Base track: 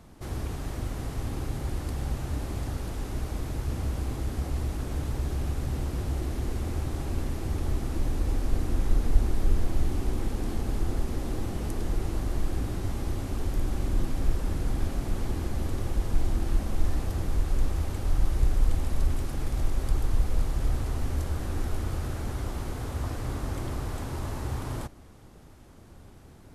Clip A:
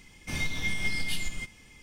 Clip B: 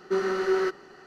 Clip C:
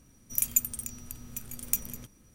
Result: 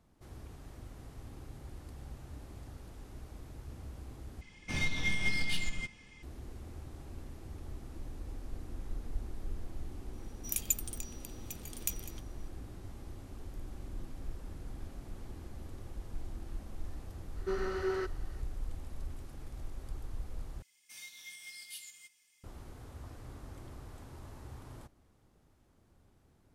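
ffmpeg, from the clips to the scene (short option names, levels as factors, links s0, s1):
-filter_complex "[1:a]asplit=2[s0][s1];[0:a]volume=0.158[s2];[s0]adynamicsmooth=sensitivity=7.5:basefreq=6600[s3];[3:a]equalizer=f=3600:w=0.76:g=11.5[s4];[s1]aderivative[s5];[s2]asplit=3[s6][s7][s8];[s6]atrim=end=4.414[s9];[s3]atrim=end=1.82,asetpts=PTS-STARTPTS,volume=0.841[s10];[s7]atrim=start=6.226:end=20.624[s11];[s5]atrim=end=1.82,asetpts=PTS-STARTPTS,volume=0.398[s12];[s8]atrim=start=22.436[s13];[s4]atrim=end=2.34,asetpts=PTS-STARTPTS,volume=0.335,afade=t=in:d=0.004:c=hsin,afade=t=out:st=2.336:d=0.004:c=hsin,adelay=10140[s14];[2:a]atrim=end=1.06,asetpts=PTS-STARTPTS,volume=0.335,afade=t=in:d=0.004:c=hsin,afade=t=out:st=1.056:d=0.004:c=hsin,adelay=17360[s15];[s9][s10]acrossfade=d=0.004:c1=hsin:c2=hsin[s16];[s16][s11]acrossfade=d=0.004:c1=hsin:c2=hsin[s17];[s17][s12]acrossfade=d=0.004:c1=hsin:c2=hsin[s18];[s18][s13]acrossfade=d=0.004:c1=hsin:c2=hsin[s19];[s19][s14][s15]amix=inputs=3:normalize=0"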